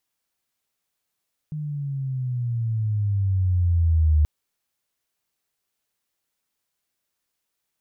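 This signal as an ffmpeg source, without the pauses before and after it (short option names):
-f lavfi -i "aevalsrc='pow(10,(-14+13*(t/2.73-1))/20)*sin(2*PI*154*2.73/(-12.5*log(2)/12)*(exp(-12.5*log(2)/12*t/2.73)-1))':d=2.73:s=44100"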